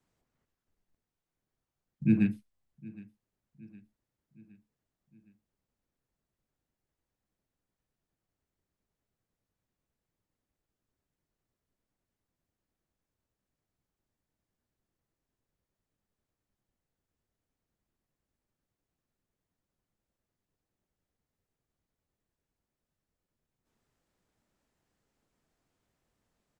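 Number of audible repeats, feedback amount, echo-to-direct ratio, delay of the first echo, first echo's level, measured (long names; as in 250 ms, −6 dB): 3, 54%, −20.0 dB, 764 ms, −21.5 dB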